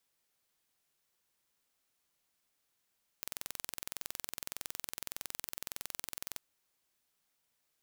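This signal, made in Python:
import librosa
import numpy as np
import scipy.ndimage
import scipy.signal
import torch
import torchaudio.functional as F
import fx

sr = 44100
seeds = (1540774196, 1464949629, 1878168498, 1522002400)

y = 10.0 ** (-11.5 / 20.0) * (np.mod(np.arange(round(3.15 * sr)), round(sr / 21.7)) == 0)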